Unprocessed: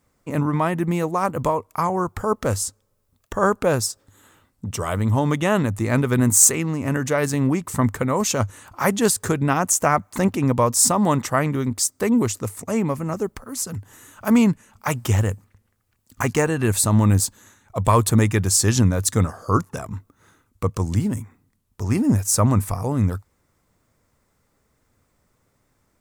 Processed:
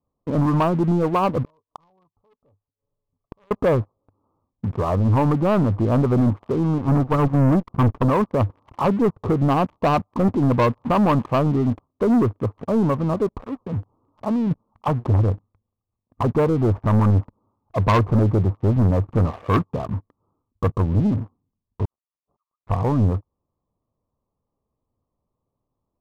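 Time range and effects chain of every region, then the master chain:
0:01.44–0:03.51: comb filter 7 ms, depth 47% + hard clipping −19 dBFS + gate with flip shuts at −25 dBFS, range −27 dB
0:06.78–0:08.10: lower of the sound and its delayed copy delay 0.71 ms + noise gate −24 dBFS, range −10 dB + leveller curve on the samples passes 1
0:13.59–0:14.51: high-shelf EQ 2,500 Hz −7.5 dB + downward compressor 16 to 1, threshold −22 dBFS
0:21.85–0:22.67: Butterworth high-pass 2,600 Hz + de-essing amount 90%
whole clip: Butterworth low-pass 1,200 Hz 96 dB per octave; leveller curve on the samples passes 3; level −6 dB

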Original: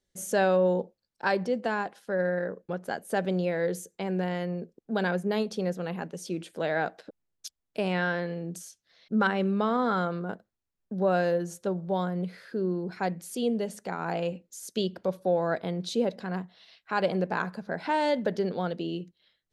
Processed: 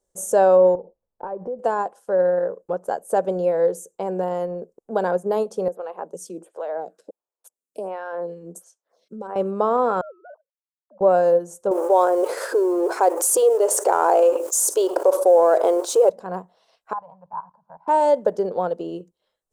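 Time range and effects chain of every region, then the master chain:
0:00.75–0:01.59: low-pass filter 1,600 Hz + downward compressor 16 to 1, threshold −35 dBFS + spectral tilt −2.5 dB per octave
0:05.68–0:09.36: Butterworth high-pass 170 Hz + downward compressor, threshold −30 dBFS + phaser with staggered stages 1.4 Hz
0:10.01–0:11.01: three sine waves on the formant tracks + four-pole ladder band-pass 910 Hz, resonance 25%
0:11.71–0:16.10: mu-law and A-law mismatch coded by mu + linear-phase brick-wall high-pass 280 Hz + envelope flattener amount 70%
0:16.93–0:17.88: pair of resonant band-passes 370 Hz, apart 2.7 octaves + output level in coarse steps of 12 dB
whole clip: octave-band graphic EQ 125/250/500/1,000/2,000/4,000/8,000 Hz −7/−5/+8/+8/−11/−11/+9 dB; transient designer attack 0 dB, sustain −4 dB; level +2.5 dB

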